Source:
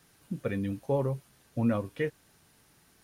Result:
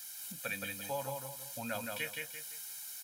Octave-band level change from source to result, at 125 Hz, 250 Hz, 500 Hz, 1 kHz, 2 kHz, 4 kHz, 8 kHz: -16.5 dB, -16.0 dB, -10.0 dB, -1.5 dB, +3.5 dB, +10.0 dB, n/a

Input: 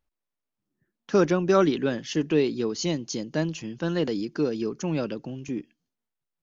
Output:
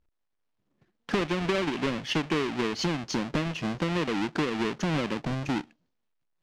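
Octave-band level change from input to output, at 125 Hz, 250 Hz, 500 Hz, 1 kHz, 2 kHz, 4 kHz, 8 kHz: -1.0 dB, -3.0 dB, -6.0 dB, +1.0 dB, +3.5 dB, +2.5 dB, n/a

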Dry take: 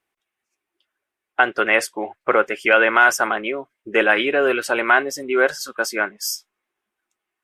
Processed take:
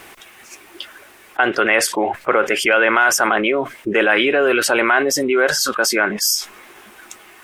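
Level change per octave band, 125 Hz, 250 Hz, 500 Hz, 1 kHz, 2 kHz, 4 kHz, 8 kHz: n/a, +5.5 dB, +2.5 dB, +1.5 dB, +1.5 dB, +7.5 dB, +9.0 dB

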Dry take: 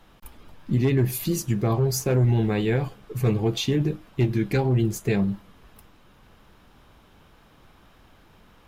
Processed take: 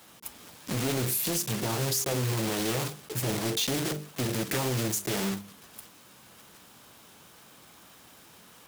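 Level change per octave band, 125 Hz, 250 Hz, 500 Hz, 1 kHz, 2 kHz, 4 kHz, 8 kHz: -10.0, -7.5, -6.5, -1.0, -0.5, +3.0, +4.5 dB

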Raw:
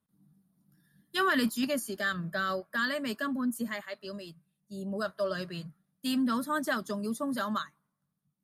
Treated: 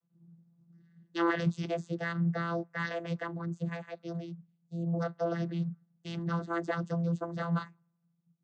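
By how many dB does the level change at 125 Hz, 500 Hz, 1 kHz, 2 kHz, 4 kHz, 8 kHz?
+11.5 dB, -1.0 dB, -3.5 dB, -6.0 dB, -10.5 dB, under -15 dB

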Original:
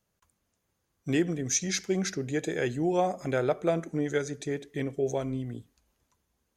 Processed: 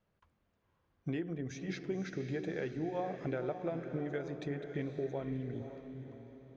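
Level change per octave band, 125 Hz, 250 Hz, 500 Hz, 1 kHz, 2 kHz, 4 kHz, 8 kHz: -6.0 dB, -8.0 dB, -9.0 dB, -10.0 dB, -9.5 dB, -15.5 dB, under -25 dB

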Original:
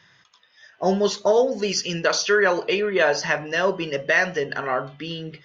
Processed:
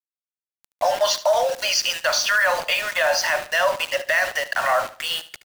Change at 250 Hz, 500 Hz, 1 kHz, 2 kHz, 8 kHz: -21.0 dB, -2.0 dB, +4.0 dB, +2.5 dB, n/a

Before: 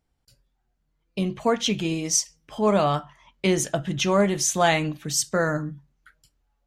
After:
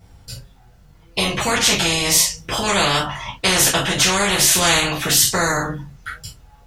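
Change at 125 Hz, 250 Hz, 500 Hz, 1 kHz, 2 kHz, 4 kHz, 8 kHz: +2.5, 0.0, 0.0, +5.0, +10.5, +13.0, +10.0 dB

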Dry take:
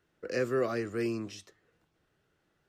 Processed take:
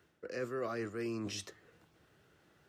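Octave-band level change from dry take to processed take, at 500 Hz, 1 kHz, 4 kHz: -7.5, -4.5, +0.5 dB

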